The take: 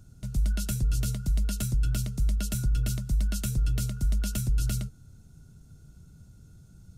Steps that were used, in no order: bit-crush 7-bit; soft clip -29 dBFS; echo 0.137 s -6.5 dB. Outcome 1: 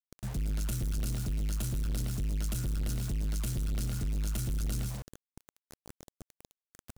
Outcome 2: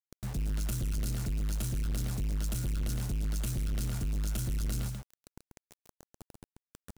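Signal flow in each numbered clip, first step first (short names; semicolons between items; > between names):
echo > bit-crush > soft clip; bit-crush > echo > soft clip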